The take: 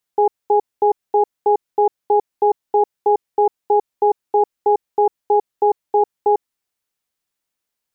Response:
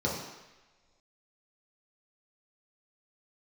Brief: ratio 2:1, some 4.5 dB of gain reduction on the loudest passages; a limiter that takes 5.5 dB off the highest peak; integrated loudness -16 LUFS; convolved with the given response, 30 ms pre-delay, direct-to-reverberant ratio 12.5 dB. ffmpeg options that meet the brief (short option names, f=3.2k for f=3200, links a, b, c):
-filter_complex "[0:a]acompressor=threshold=-19dB:ratio=2,alimiter=limit=-14dB:level=0:latency=1,asplit=2[a][b];[1:a]atrim=start_sample=2205,adelay=30[c];[b][c]afir=irnorm=-1:irlink=0,volume=-21.5dB[d];[a][d]amix=inputs=2:normalize=0,volume=8dB"